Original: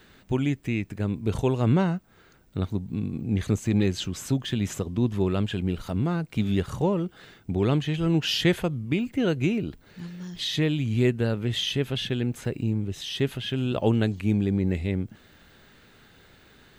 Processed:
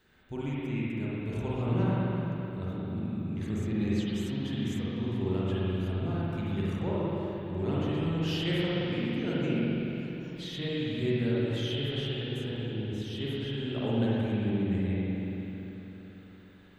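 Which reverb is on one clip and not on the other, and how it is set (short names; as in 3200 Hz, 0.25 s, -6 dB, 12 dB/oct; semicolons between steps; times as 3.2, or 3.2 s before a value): spring tank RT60 3.7 s, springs 43/56 ms, chirp 75 ms, DRR -8.5 dB; gain -14 dB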